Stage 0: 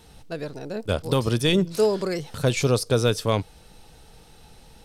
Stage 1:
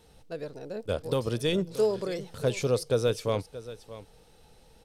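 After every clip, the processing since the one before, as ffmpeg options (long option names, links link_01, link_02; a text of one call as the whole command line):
ffmpeg -i in.wav -af "equalizer=frequency=500:width=2.5:gain=6.5,aecho=1:1:629:0.168,volume=-8.5dB" out.wav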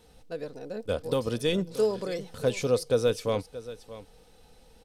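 ffmpeg -i in.wav -af "aecho=1:1:4:0.3" out.wav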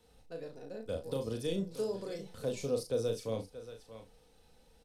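ffmpeg -i in.wav -filter_complex "[0:a]acrossover=split=200|770|3400[link_01][link_02][link_03][link_04];[link_03]acompressor=threshold=-46dB:ratio=6[link_05];[link_01][link_02][link_05][link_04]amix=inputs=4:normalize=0,aecho=1:1:36|68:0.562|0.168,volume=-8.5dB" out.wav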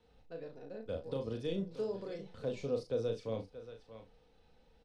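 ffmpeg -i in.wav -af "lowpass=3700,volume=-2dB" out.wav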